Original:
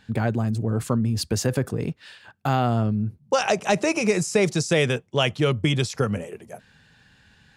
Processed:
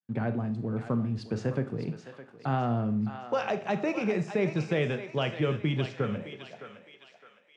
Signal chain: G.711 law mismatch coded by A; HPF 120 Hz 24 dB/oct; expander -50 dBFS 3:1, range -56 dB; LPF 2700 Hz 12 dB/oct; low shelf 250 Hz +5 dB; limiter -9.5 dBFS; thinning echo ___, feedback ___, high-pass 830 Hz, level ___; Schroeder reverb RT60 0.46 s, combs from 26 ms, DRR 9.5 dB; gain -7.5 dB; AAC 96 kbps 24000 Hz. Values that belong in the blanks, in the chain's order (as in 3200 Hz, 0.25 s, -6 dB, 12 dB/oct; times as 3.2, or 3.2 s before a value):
0.612 s, 47%, -8 dB